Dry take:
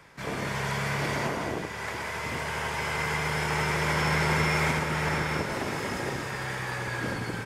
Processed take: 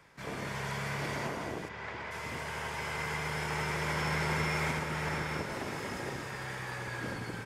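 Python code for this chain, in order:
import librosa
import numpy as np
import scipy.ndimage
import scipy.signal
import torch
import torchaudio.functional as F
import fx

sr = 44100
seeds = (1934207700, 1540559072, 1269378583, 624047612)

y = fx.lowpass(x, sr, hz=3800.0, slope=12, at=(1.68, 2.1), fade=0.02)
y = y * 10.0 ** (-6.5 / 20.0)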